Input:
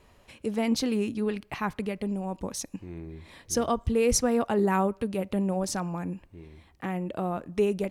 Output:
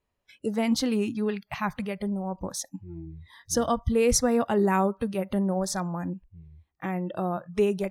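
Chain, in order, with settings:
noise reduction from a noise print of the clip's start 24 dB
level +1.5 dB

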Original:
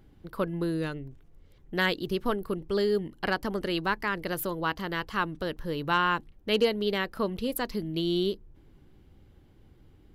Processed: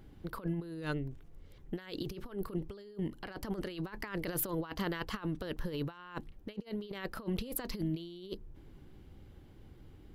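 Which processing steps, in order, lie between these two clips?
compressor whose output falls as the input rises −34 dBFS, ratio −0.5
level −3.5 dB

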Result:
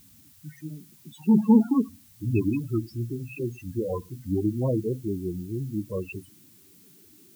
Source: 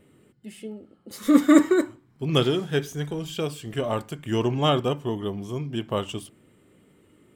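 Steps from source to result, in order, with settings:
pitch glide at a constant tempo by −6.5 semitones ending unshifted
spectral peaks only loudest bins 8
background noise blue −56 dBFS

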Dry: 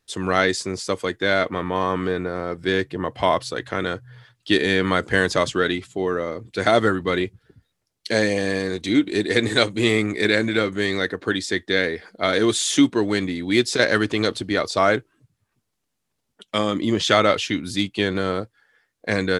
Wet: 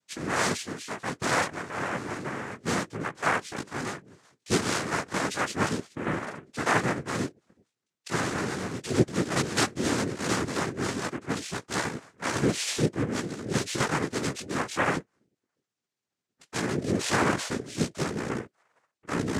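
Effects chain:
pitch glide at a constant tempo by −7.5 semitones starting unshifted
chorus effect 0.32 Hz, delay 15 ms, depth 6.6 ms
cochlear-implant simulation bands 3
level −3.5 dB

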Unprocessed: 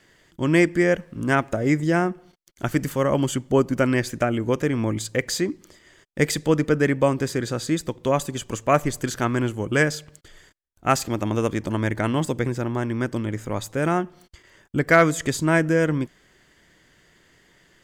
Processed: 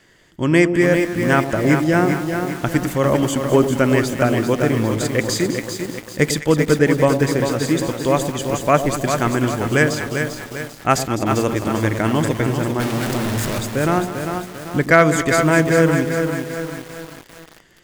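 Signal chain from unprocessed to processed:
0:12.80–0:13.59: sign of each sample alone
delay that swaps between a low-pass and a high-pass 103 ms, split 820 Hz, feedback 69%, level −8.5 dB
feedback echo at a low word length 396 ms, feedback 55%, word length 6 bits, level −6 dB
level +3.5 dB

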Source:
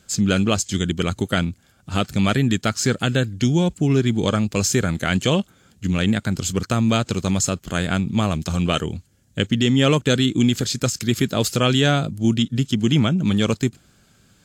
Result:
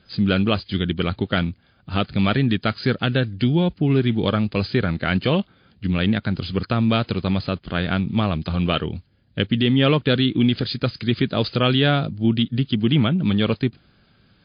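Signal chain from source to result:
0:04.88–0:05.36: notch filter 3,300 Hz, Q 9.1
MP3 40 kbit/s 11,025 Hz

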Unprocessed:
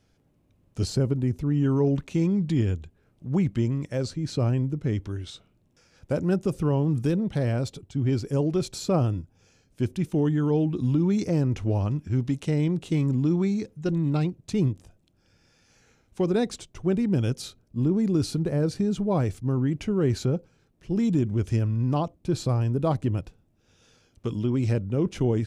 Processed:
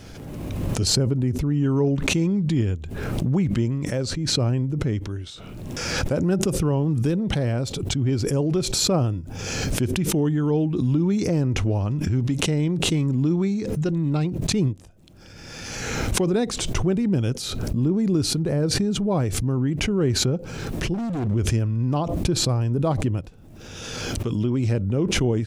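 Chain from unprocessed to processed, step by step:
0:20.94–0:21.34: gain into a clipping stage and back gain 26.5 dB
background raised ahead of every attack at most 28 dB per second
level +1.5 dB

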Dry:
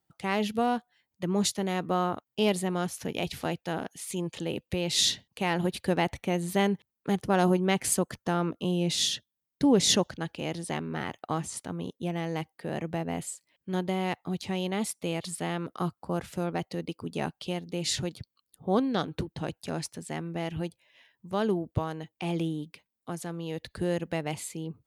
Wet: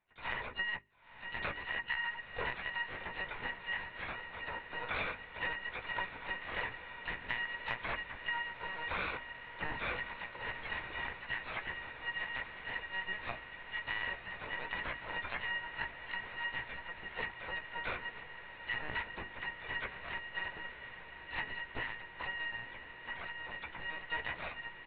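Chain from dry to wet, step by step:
samples in bit-reversed order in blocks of 256 samples
high-pass filter 260 Hz 12 dB per octave
linear-prediction vocoder at 8 kHz pitch kept
downward compressor 12 to 1, threshold −39 dBFS, peak gain reduction 12.5 dB
pitch shifter −6.5 semitones
mains-hum notches 50/100/150/200/250/300/350/400 Hz
double-tracking delay 16 ms −11 dB
feedback delay with all-pass diffusion 1,015 ms, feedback 79%, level −11.5 dB
pitch-shifted copies added +7 semitones −10 dB
level +5 dB

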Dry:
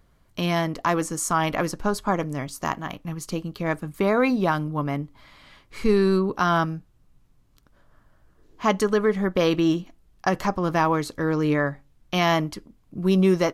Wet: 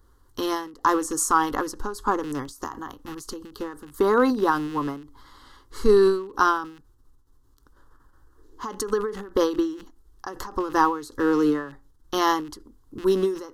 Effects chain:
loose part that buzzes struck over −32 dBFS, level −27 dBFS
phaser with its sweep stopped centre 640 Hz, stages 6
every ending faded ahead of time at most 110 dB per second
level +5 dB

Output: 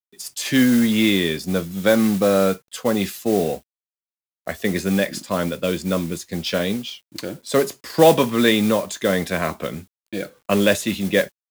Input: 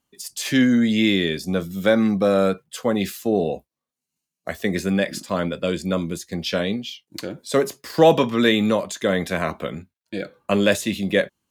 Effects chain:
noise that follows the level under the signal 17 dB
bit-depth reduction 10 bits, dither none
level +1 dB

